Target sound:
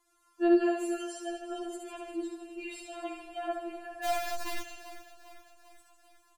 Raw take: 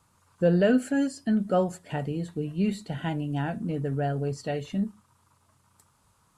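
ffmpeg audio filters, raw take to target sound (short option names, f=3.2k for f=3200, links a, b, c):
-filter_complex "[0:a]asplit=2[a][b];[b]aecho=0:1:70|150.5|243.1|349.5|472:0.631|0.398|0.251|0.158|0.1[c];[a][c]amix=inputs=2:normalize=0,asettb=1/sr,asplit=3[d][e][f];[d]atrim=end=4.044[g];[e]atrim=start=4.04:end=4.62,asetpts=PTS-STARTPTS,afade=t=in:d=0.004:c=qsin,afade=t=out:st=0.576:d=0.004:c=qsin,acrusher=bits=5:dc=4:mix=0:aa=0.000001[h];[f]atrim=start=4.616[i];[g][h]acrossfade=d=0.004:c1=hsin:c2=qsin[j];[j][i]acrossfade=d=0.004:c1=qsin:c2=hsin,bandreject=f=60:t=h:w=6,bandreject=f=120:t=h:w=6,bandreject=f=180:t=h:w=6,bandreject=f=240:t=h:w=6,bandreject=f=300:t=h:w=6,bandreject=f=360:t=h:w=6,asplit=2[k][l];[l]aecho=0:1:396|792|1188|1584|1980:0.178|0.0996|0.0558|0.0312|0.0175[m];[k][m]amix=inputs=2:normalize=0,afftfilt=real='re*4*eq(mod(b,16),0)':imag='im*4*eq(mod(b,16),0)':win_size=2048:overlap=0.75,volume=-2.5dB"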